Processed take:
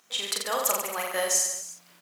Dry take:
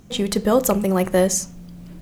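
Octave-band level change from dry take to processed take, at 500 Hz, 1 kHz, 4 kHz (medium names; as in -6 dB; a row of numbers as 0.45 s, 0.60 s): -12.5 dB, -4.0 dB, +0.5 dB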